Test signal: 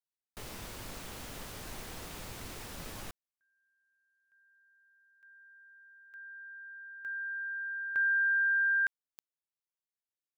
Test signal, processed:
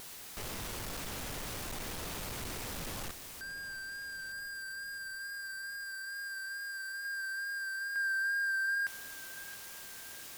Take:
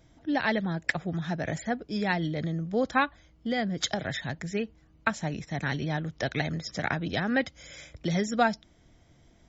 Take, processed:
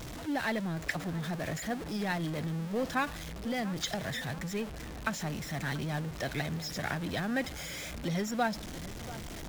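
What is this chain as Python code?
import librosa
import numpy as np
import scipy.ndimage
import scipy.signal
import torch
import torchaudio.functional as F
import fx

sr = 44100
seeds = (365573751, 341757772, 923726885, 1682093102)

y = x + 0.5 * 10.0 ** (-29.0 / 20.0) * np.sign(x)
y = fx.vibrato(y, sr, rate_hz=2.3, depth_cents=24.0)
y = fx.echo_filtered(y, sr, ms=686, feedback_pct=56, hz=2000.0, wet_db=-16.0)
y = y * 10.0 ** (-7.5 / 20.0)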